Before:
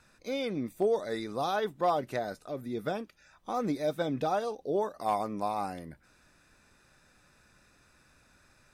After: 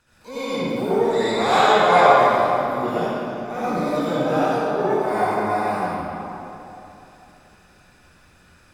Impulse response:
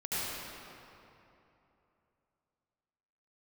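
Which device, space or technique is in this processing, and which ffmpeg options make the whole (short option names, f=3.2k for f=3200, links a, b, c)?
shimmer-style reverb: -filter_complex "[0:a]asettb=1/sr,asplit=3[a][b][c];[a]atrim=end=1.134[d];[b]atrim=start=1.13:end=2.09,asetpts=PTS-STARTPTS,afade=t=in:d=0.004:c=qsin,afade=t=out:st=0.956:d=0.004:c=qsin,equalizer=f=500:t=o:w=1:g=3,equalizer=f=1k:t=o:w=1:g=9,equalizer=f=2k:t=o:w=1:g=3,equalizer=f=4k:t=o:w=1:g=12,equalizer=f=8k:t=o:w=1:g=-7[e];[c]atrim=start=2.086[f];[d][e]acrossfade=d=0.004:c1=hsin:c2=qsin[g];[g][f]acrossfade=d=0.004:c1=qsin:c2=hsin,asplit=2[h][i];[i]asetrate=88200,aresample=44100,atempo=0.5,volume=-10dB[j];[h][j]amix=inputs=2:normalize=0[k];[1:a]atrim=start_sample=2205[l];[k][l]afir=irnorm=-1:irlink=0,volume=2.5dB"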